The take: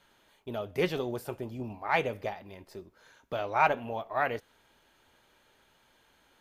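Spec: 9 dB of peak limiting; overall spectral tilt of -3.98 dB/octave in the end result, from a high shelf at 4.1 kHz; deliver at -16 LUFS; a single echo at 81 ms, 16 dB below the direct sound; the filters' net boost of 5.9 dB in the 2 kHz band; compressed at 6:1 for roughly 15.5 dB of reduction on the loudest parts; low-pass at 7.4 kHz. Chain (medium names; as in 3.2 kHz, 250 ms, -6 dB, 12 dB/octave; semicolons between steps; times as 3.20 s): low-pass 7.4 kHz; peaking EQ 2 kHz +5.5 dB; treble shelf 4.1 kHz +8.5 dB; compression 6:1, threshold -34 dBFS; peak limiter -30 dBFS; delay 81 ms -16 dB; trim +26.5 dB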